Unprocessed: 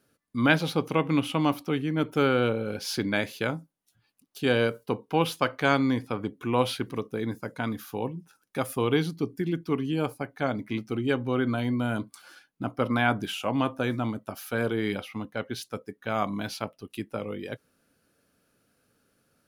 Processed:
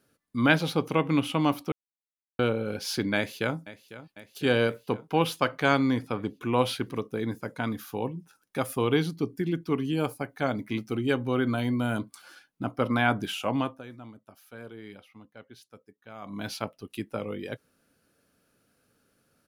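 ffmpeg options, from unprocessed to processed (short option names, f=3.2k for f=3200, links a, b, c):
-filter_complex "[0:a]asplit=2[a][b];[b]afade=t=in:st=3.16:d=0.01,afade=t=out:st=3.57:d=0.01,aecho=0:1:500|1000|1500|2000|2500|3000|3500|4000:0.158489|0.110943|0.0776598|0.0543618|0.0380533|0.0266373|0.0186461|0.0130523[c];[a][c]amix=inputs=2:normalize=0,asettb=1/sr,asplit=3[d][e][f];[d]atrim=end=9.794[g];[e]atrim=start=9.79:end=11.99,asetpts=PTS-STARTPTS,afade=t=in:d=0.004:c=qsin,afade=t=out:st=2.196:d=0.004:c=qsin,highshelf=f=6.4k:g=5.5[h];[f]atrim=start=11.986[i];[g][h]acrossfade=d=0.004:c1=hsin:c2=qsin[j];[j][i]acrossfade=d=0.004:c1=qsin:c2=hsin,asplit=5[k][l][m][n][o];[k]atrim=end=1.72,asetpts=PTS-STARTPTS,afade=t=out:st=1.716:d=0.004:c=hsin[p];[l]atrim=start=1.72:end=2.39,asetpts=PTS-STARTPTS,volume=0[q];[m]atrim=start=2.39:end=13.82,asetpts=PTS-STARTPTS,afade=t=in:d=0.004:c=hsin,afade=t=out:st=11.15:d=0.28:silence=0.158489[r];[n]atrim=start=13.82:end=16.22,asetpts=PTS-STARTPTS,volume=-16dB[s];[o]atrim=start=16.22,asetpts=PTS-STARTPTS,afade=t=in:d=0.28:silence=0.158489[t];[p][q][r][s][t]concat=n=5:v=0:a=1"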